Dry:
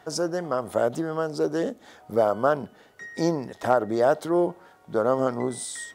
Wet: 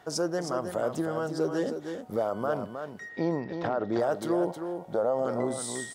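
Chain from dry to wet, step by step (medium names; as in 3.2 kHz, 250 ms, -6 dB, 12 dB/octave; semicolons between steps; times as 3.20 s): 3.08–3.98 s: low-pass 3.2 kHz -> 5.7 kHz 24 dB/octave; 4.50–5.25 s: high-order bell 660 Hz +9 dB 1 oct; peak limiter -16.5 dBFS, peak gain reduction 11.5 dB; 1.18–1.68 s: comb of notches 220 Hz; delay 315 ms -7.5 dB; trim -2 dB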